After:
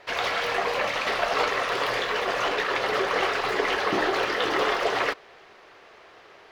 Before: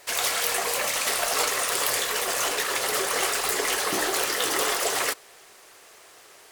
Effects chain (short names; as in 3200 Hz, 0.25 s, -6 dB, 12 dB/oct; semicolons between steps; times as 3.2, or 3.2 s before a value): air absorption 280 m; gain +4.5 dB